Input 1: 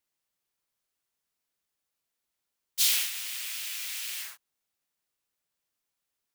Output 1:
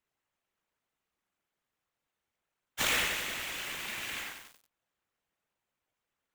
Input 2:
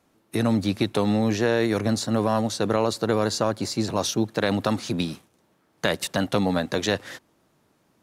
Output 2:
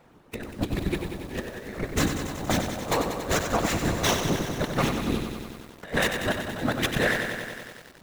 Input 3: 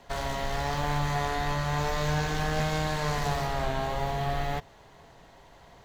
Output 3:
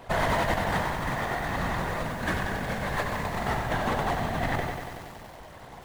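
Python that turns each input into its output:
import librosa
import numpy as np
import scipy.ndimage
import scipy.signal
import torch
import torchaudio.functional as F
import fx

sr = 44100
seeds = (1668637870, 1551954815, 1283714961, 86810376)

p1 = scipy.signal.medfilt(x, 9)
p2 = np.clip(p1, -10.0 ** (-22.0 / 20.0), 10.0 ** (-22.0 / 20.0))
p3 = p1 + F.gain(torch.from_numpy(p2), -11.5).numpy()
p4 = fx.peak_eq(p3, sr, hz=330.0, db=-5.5, octaves=0.23)
p5 = p4 + 10.0 ** (-11.5 / 20.0) * np.pad(p4, (int(121 * sr / 1000.0), 0))[:len(p4)]
p6 = fx.whisperise(p5, sr, seeds[0])
p7 = fx.dynamic_eq(p6, sr, hz=1800.0, q=2.5, threshold_db=-46.0, ratio=4.0, max_db=5)
p8 = fx.over_compress(p7, sr, threshold_db=-30.0, ratio=-0.5)
p9 = fx.echo_crushed(p8, sr, ms=94, feedback_pct=80, bits=8, wet_db=-7.0)
y = F.gain(torch.from_numpy(p9), 1.5).numpy()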